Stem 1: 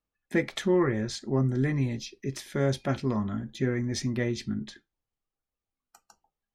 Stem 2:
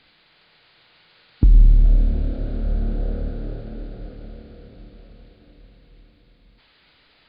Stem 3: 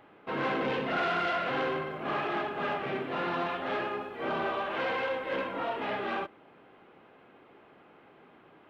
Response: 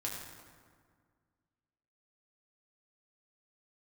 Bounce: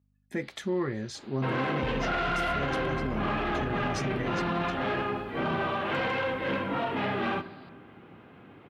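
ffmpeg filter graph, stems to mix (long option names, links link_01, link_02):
-filter_complex "[0:a]aeval=exprs='val(0)+0.000891*(sin(2*PI*50*n/s)+sin(2*PI*2*50*n/s)/2+sin(2*PI*3*50*n/s)/3+sin(2*PI*4*50*n/s)/4+sin(2*PI*5*50*n/s)/5)':channel_layout=same,volume=-5dB[link_01];[1:a]acompressor=threshold=-23dB:ratio=6,adelay=400,volume=-3.5dB[link_02];[2:a]asubboost=boost=4:cutoff=240,adelay=1150,volume=2.5dB,asplit=2[link_03][link_04];[link_04]volume=-12dB[link_05];[3:a]atrim=start_sample=2205[link_06];[link_05][link_06]afir=irnorm=-1:irlink=0[link_07];[link_01][link_02][link_03][link_07]amix=inputs=4:normalize=0,highpass=62,alimiter=limit=-21dB:level=0:latency=1:release=32"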